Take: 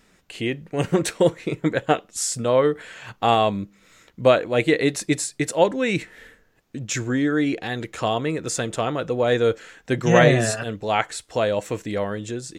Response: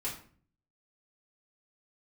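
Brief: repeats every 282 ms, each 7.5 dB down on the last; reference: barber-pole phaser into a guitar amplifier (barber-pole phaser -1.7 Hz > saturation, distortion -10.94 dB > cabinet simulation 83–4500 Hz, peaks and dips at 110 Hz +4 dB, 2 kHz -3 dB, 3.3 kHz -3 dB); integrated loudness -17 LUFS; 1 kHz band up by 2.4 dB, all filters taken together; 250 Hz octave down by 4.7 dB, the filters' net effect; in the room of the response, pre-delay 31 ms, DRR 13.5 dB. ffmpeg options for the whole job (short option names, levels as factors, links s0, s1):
-filter_complex "[0:a]equalizer=f=250:t=o:g=-7,equalizer=f=1000:t=o:g=4,aecho=1:1:282|564|846|1128|1410:0.422|0.177|0.0744|0.0312|0.0131,asplit=2[s0][s1];[1:a]atrim=start_sample=2205,adelay=31[s2];[s1][s2]afir=irnorm=-1:irlink=0,volume=0.158[s3];[s0][s3]amix=inputs=2:normalize=0,asplit=2[s4][s5];[s5]afreqshift=-1.7[s6];[s4][s6]amix=inputs=2:normalize=1,asoftclip=threshold=0.126,highpass=83,equalizer=f=110:t=q:w=4:g=4,equalizer=f=2000:t=q:w=4:g=-3,equalizer=f=3300:t=q:w=4:g=-3,lowpass=f=4500:w=0.5412,lowpass=f=4500:w=1.3066,volume=3.55"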